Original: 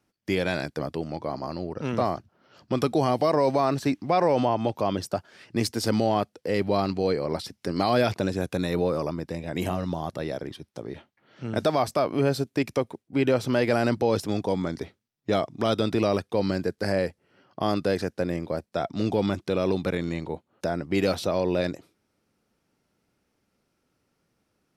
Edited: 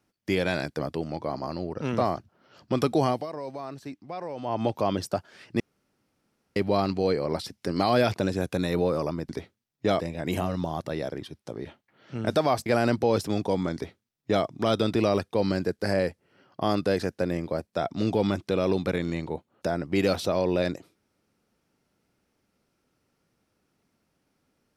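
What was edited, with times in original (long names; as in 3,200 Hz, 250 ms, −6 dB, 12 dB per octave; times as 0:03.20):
0:03.06–0:04.62: duck −14 dB, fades 0.20 s
0:05.60–0:06.56: fill with room tone
0:11.95–0:13.65: remove
0:14.73–0:15.44: duplicate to 0:09.29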